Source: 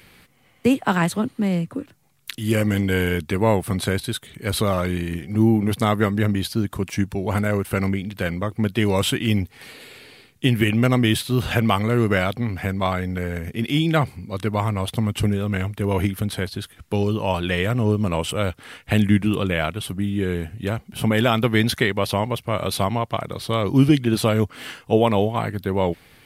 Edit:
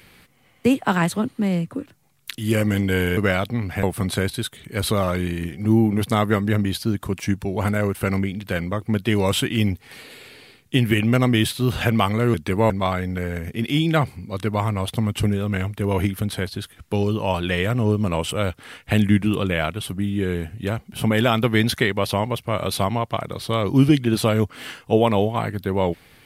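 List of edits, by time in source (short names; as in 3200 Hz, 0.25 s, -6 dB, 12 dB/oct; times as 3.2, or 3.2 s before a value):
3.17–3.53 swap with 12.04–12.7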